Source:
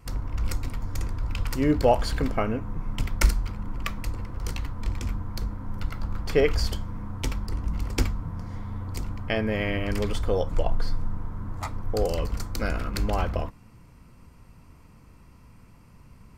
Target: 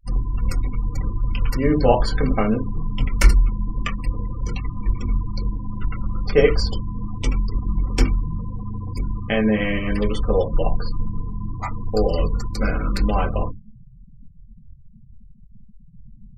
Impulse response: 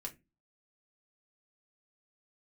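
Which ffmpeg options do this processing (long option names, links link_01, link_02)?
-filter_complex "[1:a]atrim=start_sample=2205,afade=type=out:start_time=0.15:duration=0.01,atrim=end_sample=7056[link_01];[0:a][link_01]afir=irnorm=-1:irlink=0,afftfilt=real='re*gte(hypot(re,im),0.0141)':imag='im*gte(hypot(re,im),0.0141)':win_size=1024:overlap=0.75,volume=7.5dB"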